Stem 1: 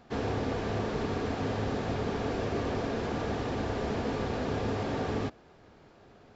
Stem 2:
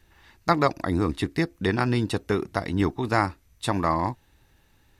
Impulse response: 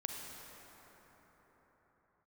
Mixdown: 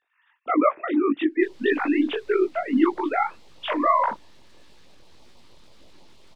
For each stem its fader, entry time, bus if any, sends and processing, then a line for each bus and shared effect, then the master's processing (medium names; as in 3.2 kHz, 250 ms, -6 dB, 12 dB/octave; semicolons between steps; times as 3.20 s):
-14.0 dB, 1.30 s, no send, graphic EQ 250/500/1000/4000 Hz -11/+5/-11/+11 dB; full-wave rectifier; LFO notch sine 6.2 Hz 600–1700 Hz
-1.0 dB, 0.00 s, no send, formants replaced by sine waves; level rider gain up to 11.5 dB; AM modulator 50 Hz, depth 35%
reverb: none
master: detune thickener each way 59 cents